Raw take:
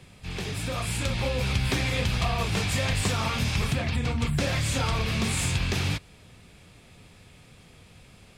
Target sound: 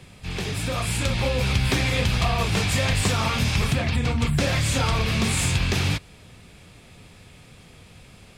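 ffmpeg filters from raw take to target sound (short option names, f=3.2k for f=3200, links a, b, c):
-af "asoftclip=type=hard:threshold=-17dB,volume=4dB"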